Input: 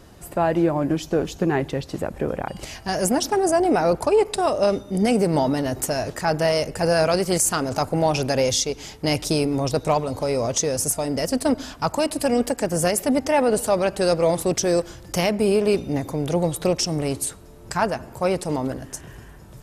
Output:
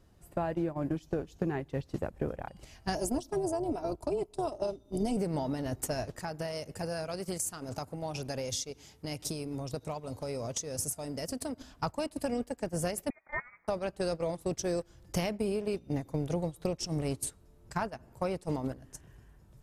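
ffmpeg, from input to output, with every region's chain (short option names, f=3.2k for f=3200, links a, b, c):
-filter_complex "[0:a]asettb=1/sr,asplit=3[a][b][c];[a]atrim=end=2.954[d];[b]atrim=start=2.95:end=5.17,asetpts=PTS-STARTPTS,afade=t=in:d=0.004:c=qsin,afade=t=out:st=2.216:d=0.004:c=qsin,equalizer=f=1.8k:t=o:w=0.97:g=-12,aecho=1:1:3:0.64,atrim=end_sample=97902,tremolo=f=230:d=0.462[e];[c]atrim=start=5.166[f];[d][e]acrossfade=d=0.004:c1=hsin:c2=qsin[g];[g][f]acrossfade=d=0.004:c1=qsin:c2=hsin,asettb=1/sr,asplit=3[h][i][j];[h]atrim=end=6.194[k];[i]atrim=start=6.19:end=11.61,asetpts=PTS-STARTPTS,afade=t=in:d=0.004:c=qsin,afade=t=out:st=5.416:d=0.004:c=qsin,acompressor=threshold=-26dB:ratio=8:attack=3.2:release=140:knee=1:detection=peak,highpass=f=63:w=0.5412,highpass=f=63:w=1.3066,highshelf=f=6.1k:g=5.5[l];[j]atrim=start=11.606[m];[k][l]acrossfade=d=0.004:c1=hsin:c2=qsin[n];[n][m]acrossfade=d=0.004:c1=qsin:c2=hsin,asettb=1/sr,asplit=3[o][p][q];[o]atrim=end=13.104[r];[p]atrim=start=13.1:end=13.68,asetpts=PTS-STARTPTS,afade=t=in:d=0.004:c=qsin,afade=t=out:st=0.576:d=0.004:c=qsin,highpass=1.4k,lowpass=f=2.3k:t=q:w=0.5098,lowpass=f=2.3k:t=q:w=0.6013,lowpass=f=2.3k:t=q:w=0.9,lowpass=f=2.3k:t=q:w=2.563,afreqshift=-2700[s];[q]atrim=start=13.676[t];[r][s]acrossfade=d=0.004:c1=hsin:c2=qsin[u];[u][t]acrossfade=d=0.004:c1=qsin:c2=hsin,acompressor=threshold=-26dB:ratio=20,agate=range=-16dB:threshold=-30dB:ratio=16:detection=peak,lowshelf=f=160:g=8,volume=-3dB"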